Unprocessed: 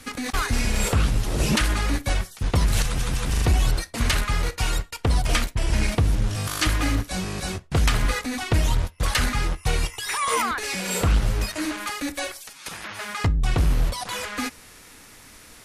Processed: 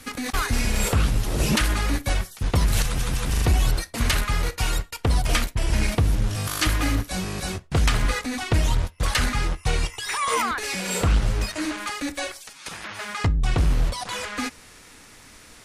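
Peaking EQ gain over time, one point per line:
peaking EQ 12 kHz 0.3 oct
7.40 s +3.5 dB
7.81 s -3.5 dB
9.34 s -3.5 dB
9.78 s -10.5 dB
10.35 s -10.5 dB
10.65 s +0.5 dB
11.18 s -8.5 dB

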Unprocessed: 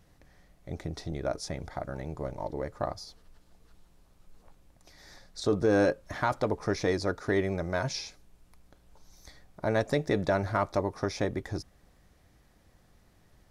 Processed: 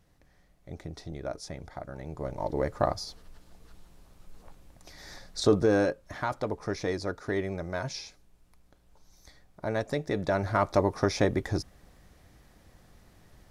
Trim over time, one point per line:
1.95 s -4 dB
2.62 s +6 dB
5.43 s +6 dB
5.90 s -3 dB
10.10 s -3 dB
10.83 s +5 dB

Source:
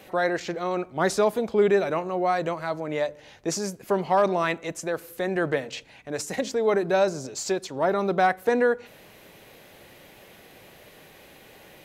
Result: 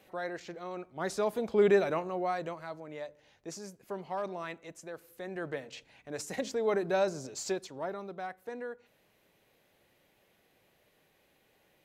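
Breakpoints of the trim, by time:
0.92 s -13 dB
1.71 s -3 dB
2.94 s -15 dB
5.05 s -15 dB
6.37 s -7 dB
7.52 s -7 dB
8.14 s -19 dB

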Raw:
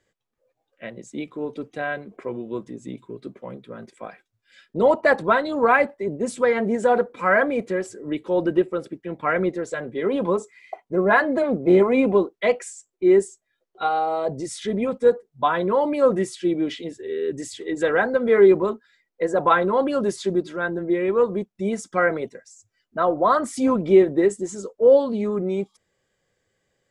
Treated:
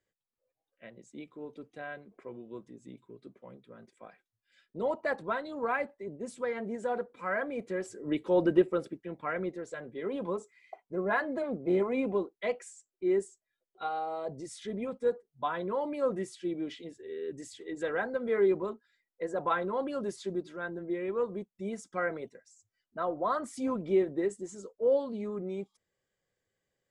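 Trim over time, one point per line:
7.44 s -14 dB
8.13 s -4 dB
8.76 s -4 dB
9.29 s -12 dB

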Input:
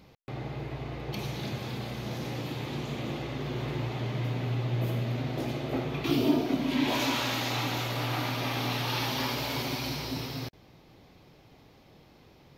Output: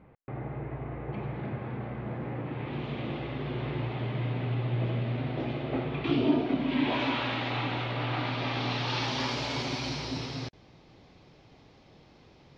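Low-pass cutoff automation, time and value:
low-pass 24 dB/octave
2.43 s 2 kHz
2.88 s 3.4 kHz
8.00 s 3.4 kHz
9.33 s 6.6 kHz

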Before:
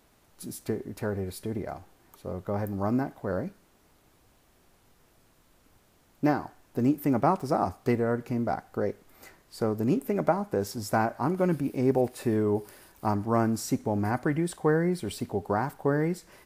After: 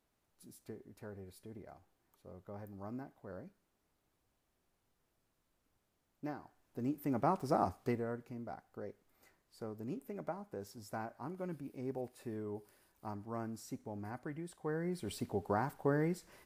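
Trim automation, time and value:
6.39 s -18 dB
7.60 s -5.5 dB
8.34 s -17 dB
14.58 s -17 dB
15.15 s -7 dB

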